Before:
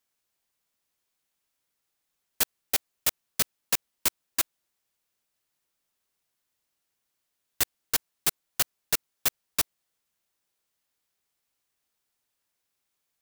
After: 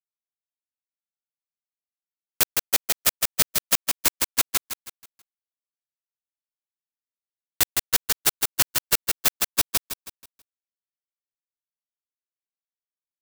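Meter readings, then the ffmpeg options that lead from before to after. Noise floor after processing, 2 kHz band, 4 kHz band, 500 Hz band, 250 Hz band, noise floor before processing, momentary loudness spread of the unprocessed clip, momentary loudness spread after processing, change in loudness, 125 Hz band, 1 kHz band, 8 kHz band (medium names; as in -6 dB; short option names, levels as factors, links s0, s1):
under -85 dBFS, +6.0 dB, +6.0 dB, +6.0 dB, +5.5 dB, -81 dBFS, 3 LU, 6 LU, +6.0 dB, +5.5 dB, +6.0 dB, +6.0 dB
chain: -filter_complex "[0:a]acrusher=bits=3:mix=0:aa=0.000001,asplit=2[s0][s1];[s1]aecho=0:1:161|322|483|644|805:0.668|0.247|0.0915|0.0339|0.0125[s2];[s0][s2]amix=inputs=2:normalize=0,volume=1.5"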